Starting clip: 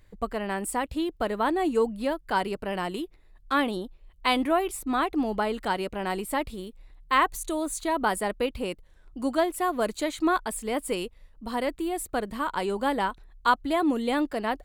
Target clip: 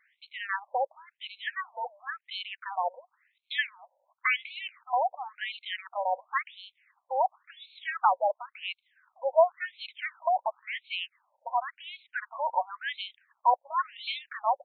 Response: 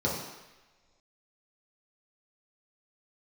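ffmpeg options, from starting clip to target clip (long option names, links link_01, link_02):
-af "acrusher=bits=7:mode=log:mix=0:aa=0.000001,afftfilt=real='re*between(b*sr/1024,670*pow(3100/670,0.5+0.5*sin(2*PI*0.94*pts/sr))/1.41,670*pow(3100/670,0.5+0.5*sin(2*PI*0.94*pts/sr))*1.41)':imag='im*between(b*sr/1024,670*pow(3100/670,0.5+0.5*sin(2*PI*0.94*pts/sr))/1.41,670*pow(3100/670,0.5+0.5*sin(2*PI*0.94*pts/sr))*1.41)':win_size=1024:overlap=0.75,volume=5dB"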